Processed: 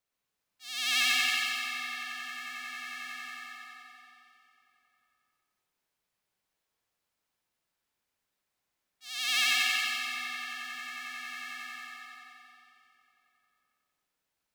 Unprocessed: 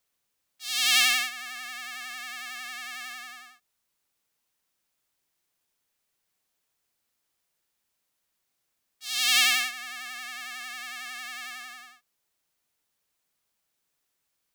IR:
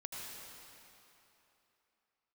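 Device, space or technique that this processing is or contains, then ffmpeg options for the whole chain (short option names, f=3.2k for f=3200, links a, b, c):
swimming-pool hall: -filter_complex "[1:a]atrim=start_sample=2205[a];[0:a][a]afir=irnorm=-1:irlink=0,highshelf=f=4.4k:g=-7,asettb=1/sr,asplit=3[b][c][d];[b]atrim=end=9.084[e];[c]atrim=start=9.08:end=9.85,asetpts=PTS-STARTPTS,afade=t=in:d=0.004:c=qsin,afade=t=out:st=0.766:d=0.004:c=qsin,highpass=280[f];[d]atrim=start=9.846[g];[e][f]acrossfade=d=0.004:c1=hsin:c2=qsin[h];[h][g]acrossfade=d=0.004:c1=qsin:c2=hsin"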